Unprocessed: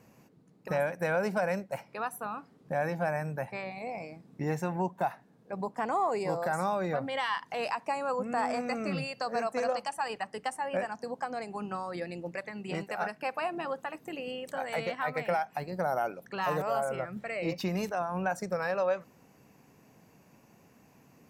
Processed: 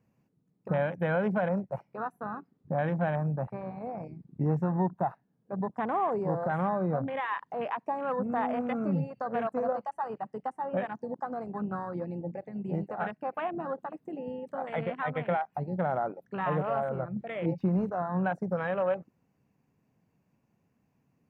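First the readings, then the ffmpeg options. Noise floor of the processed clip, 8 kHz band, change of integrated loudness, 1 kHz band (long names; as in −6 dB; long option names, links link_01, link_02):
−74 dBFS, below −25 dB, +1.0 dB, 0.0 dB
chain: -filter_complex "[0:a]acrossover=split=2500[link_01][link_02];[link_02]acompressor=threshold=-51dB:ratio=4:attack=1:release=60[link_03];[link_01][link_03]amix=inputs=2:normalize=0,afwtdn=0.0126,bass=frequency=250:gain=8,treble=frequency=4000:gain=-6"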